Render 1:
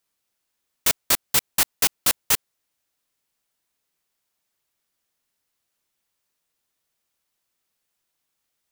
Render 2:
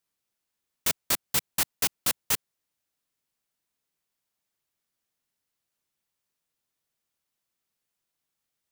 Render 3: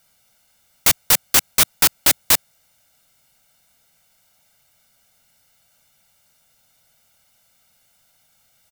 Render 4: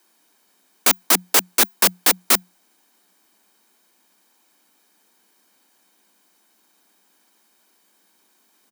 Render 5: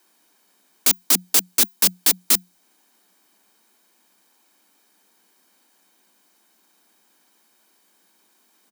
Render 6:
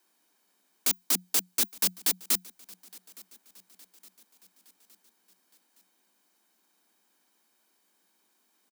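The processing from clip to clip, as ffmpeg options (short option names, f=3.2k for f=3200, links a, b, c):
-af "equalizer=f=150:w=0.76:g=4,volume=-6dB"
-af "aecho=1:1:1.4:0.84,aeval=exprs='0.422*sin(PI/2*7.08*val(0)/0.422)':c=same,volume=-1dB"
-filter_complex "[0:a]asplit=2[a][b];[b]acrusher=samples=14:mix=1:aa=0.000001,volume=-10dB[c];[a][c]amix=inputs=2:normalize=0,afreqshift=180,volume=-1.5dB"
-filter_complex "[0:a]acrossover=split=290|3000[a][b][c];[b]acompressor=threshold=-37dB:ratio=2.5[d];[a][d][c]amix=inputs=3:normalize=0"
-af "aecho=1:1:865|1730|2595|3460:0.0708|0.0382|0.0206|0.0111,volume=-9dB"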